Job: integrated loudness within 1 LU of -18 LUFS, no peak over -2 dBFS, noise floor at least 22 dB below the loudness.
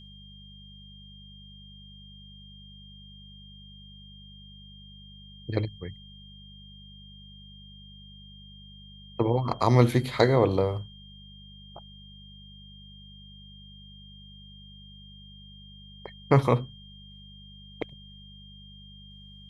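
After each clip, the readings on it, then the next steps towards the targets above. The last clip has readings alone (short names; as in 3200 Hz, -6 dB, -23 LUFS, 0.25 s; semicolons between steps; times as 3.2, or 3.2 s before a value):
hum 50 Hz; harmonics up to 200 Hz; hum level -48 dBFS; steady tone 3200 Hz; tone level -50 dBFS; loudness -25.5 LUFS; peak -4.5 dBFS; loudness target -18.0 LUFS
-> de-hum 50 Hz, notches 4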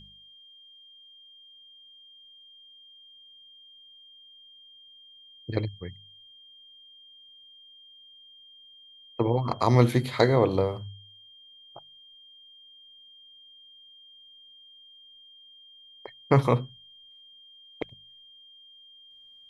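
hum none; steady tone 3200 Hz; tone level -50 dBFS
-> notch 3200 Hz, Q 30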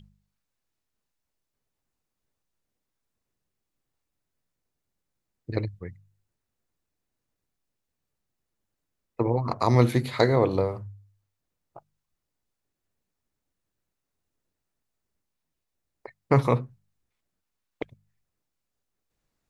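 steady tone none; loudness -25.0 LUFS; peak -4.5 dBFS; loudness target -18.0 LUFS
-> gain +7 dB; limiter -2 dBFS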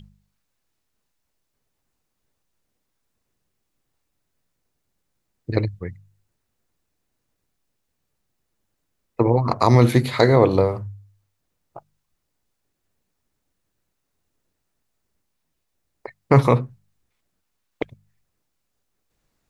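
loudness -18.5 LUFS; peak -2.0 dBFS; noise floor -76 dBFS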